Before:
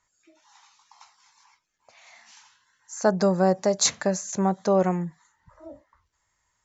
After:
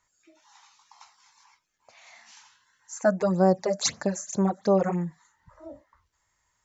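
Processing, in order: 2.97–4.97 phaser stages 8, 1.2 Hz -> 3.9 Hz, lowest notch 110–3500 Hz

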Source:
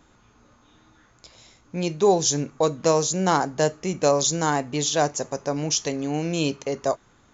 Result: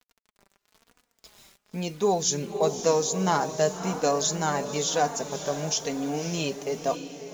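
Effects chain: requantised 8-bit, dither none; diffused feedback echo 0.563 s, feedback 47%, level -10 dB; flange 1 Hz, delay 4 ms, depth 1.2 ms, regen +27%

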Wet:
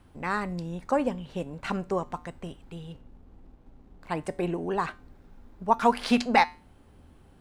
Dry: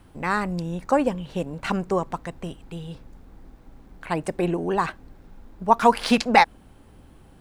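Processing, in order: 2.92–4.09 median filter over 25 samples; high shelf 9300 Hz -5 dB; resonator 81 Hz, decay 0.33 s, harmonics odd, mix 50%

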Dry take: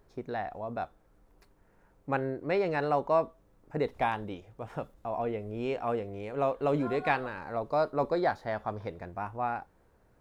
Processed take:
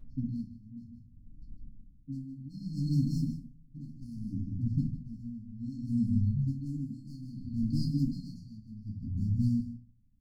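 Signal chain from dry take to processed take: spectral delete 6–6.47, 230–3000 Hz; low-pass opened by the level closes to 1300 Hz, open at -25 dBFS; in parallel at -9.5 dB: hard clip -29 dBFS, distortion -8 dB; on the sum: brick-wall FIR band-stop 280–4200 Hz; echo 0.154 s -9.5 dB; reverb RT60 0.50 s, pre-delay 3 ms, DRR -4.5 dB; dB-linear tremolo 0.64 Hz, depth 20 dB; gain +5 dB

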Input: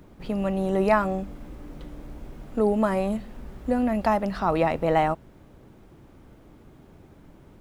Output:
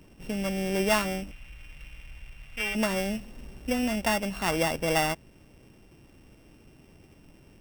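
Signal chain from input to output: sample sorter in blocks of 16 samples; 1.31–2.75 EQ curve 100 Hz 0 dB, 280 Hz -20 dB, 2500 Hz +7 dB, 5100 Hz -4 dB; gain -4 dB

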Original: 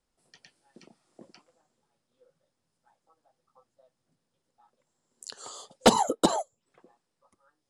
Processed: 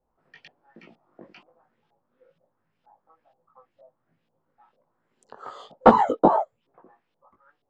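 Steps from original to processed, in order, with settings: chorus 1.2 Hz, delay 17.5 ms, depth 2.7 ms; LFO low-pass saw up 2.1 Hz 670–3300 Hz; gain +6.5 dB

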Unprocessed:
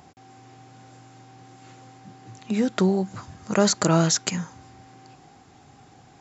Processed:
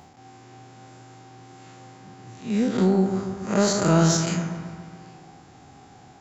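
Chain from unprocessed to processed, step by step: time blur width 0.108 s; in parallel at -7 dB: soft clip -19.5 dBFS, distortion -11 dB; on the sum: dark delay 0.139 s, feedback 59%, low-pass 1900 Hz, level -7 dB

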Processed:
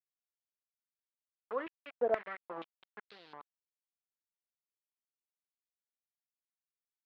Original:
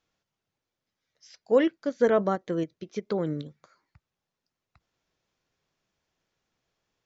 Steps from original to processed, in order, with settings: bell 900 Hz -5.5 dB 0.4 oct; sample gate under -28 dBFS; air absorption 400 m; stepped band-pass 4.2 Hz 700–4300 Hz; gain +2 dB

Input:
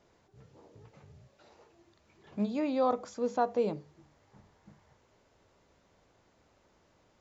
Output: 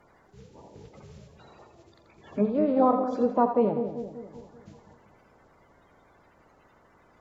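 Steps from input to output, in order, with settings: bin magnitudes rounded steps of 30 dB; treble ducked by the level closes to 1200 Hz, closed at -29.5 dBFS; split-band echo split 660 Hz, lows 0.193 s, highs 84 ms, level -8 dB; gain +7.5 dB

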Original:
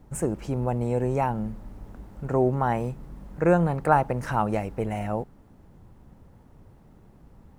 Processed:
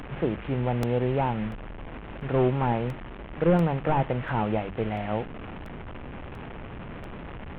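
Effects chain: delta modulation 16 kbps, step -32 dBFS; notches 50/100/150/200 Hz; crackling interface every 0.69 s, samples 64, repeat, from 0.83

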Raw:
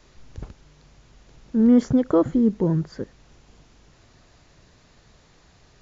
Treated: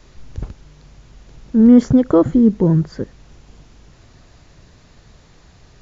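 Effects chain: low shelf 210 Hz +5.5 dB; gain +4.5 dB

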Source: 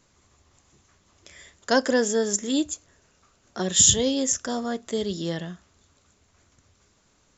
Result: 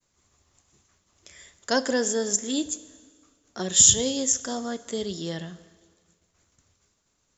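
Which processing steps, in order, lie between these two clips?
expander -57 dBFS; high shelf 5500 Hz +8 dB; plate-style reverb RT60 1.7 s, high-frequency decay 0.9×, DRR 15 dB; gain -3.5 dB

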